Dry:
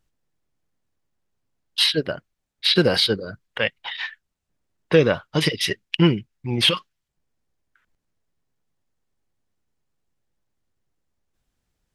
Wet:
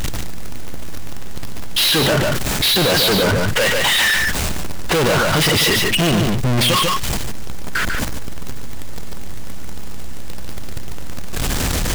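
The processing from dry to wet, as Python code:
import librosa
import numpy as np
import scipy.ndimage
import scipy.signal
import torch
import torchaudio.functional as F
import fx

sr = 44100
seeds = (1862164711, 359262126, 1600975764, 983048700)

p1 = fx.power_curve(x, sr, exponent=0.35)
p2 = fx.add_hum(p1, sr, base_hz=60, snr_db=29)
p3 = 10.0 ** (-17.5 / 20.0) * np.tanh(p2 / 10.0 ** (-17.5 / 20.0))
p4 = p3 + fx.echo_single(p3, sr, ms=145, db=-5.5, dry=0)
p5 = fx.env_flatten(p4, sr, amount_pct=70)
y = p5 * 10.0 ** (1.5 / 20.0)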